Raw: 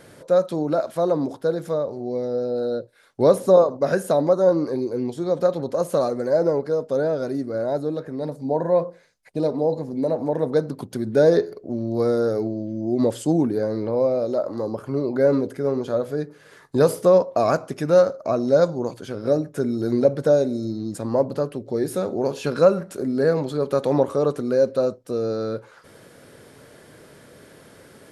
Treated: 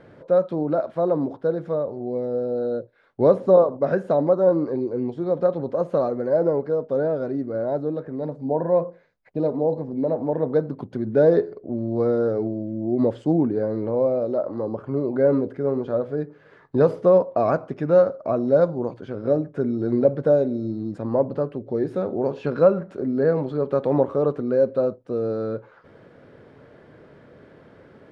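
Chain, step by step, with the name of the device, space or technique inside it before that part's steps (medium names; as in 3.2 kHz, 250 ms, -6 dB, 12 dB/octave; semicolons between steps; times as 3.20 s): phone in a pocket (low-pass 3.2 kHz 12 dB/octave; treble shelf 2.2 kHz -10 dB)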